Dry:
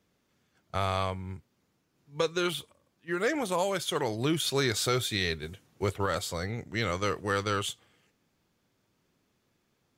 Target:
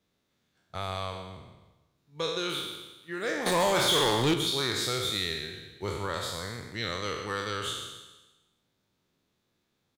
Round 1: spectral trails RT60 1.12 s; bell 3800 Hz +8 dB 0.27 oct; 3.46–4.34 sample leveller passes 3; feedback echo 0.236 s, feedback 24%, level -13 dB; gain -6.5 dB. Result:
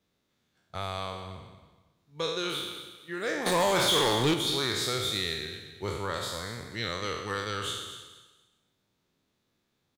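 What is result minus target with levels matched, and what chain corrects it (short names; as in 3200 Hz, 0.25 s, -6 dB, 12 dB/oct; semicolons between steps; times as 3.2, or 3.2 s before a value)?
echo 0.101 s late
spectral trails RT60 1.12 s; bell 3800 Hz +8 dB 0.27 oct; 3.46–4.34 sample leveller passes 3; feedback echo 0.135 s, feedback 24%, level -13 dB; gain -6.5 dB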